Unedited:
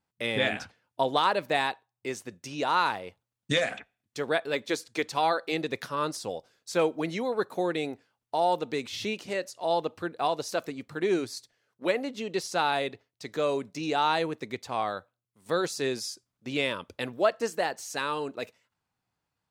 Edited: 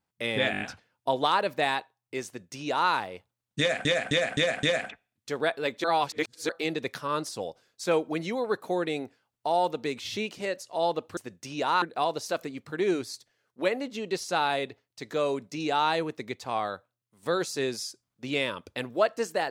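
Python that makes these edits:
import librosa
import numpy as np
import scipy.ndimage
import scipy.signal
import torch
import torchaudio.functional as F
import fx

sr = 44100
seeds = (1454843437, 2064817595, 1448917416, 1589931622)

y = fx.edit(x, sr, fx.stutter(start_s=0.52, slice_s=0.02, count=5),
    fx.duplicate(start_s=2.18, length_s=0.65, to_s=10.05),
    fx.repeat(start_s=3.51, length_s=0.26, count=5),
    fx.reverse_span(start_s=4.72, length_s=0.65), tone=tone)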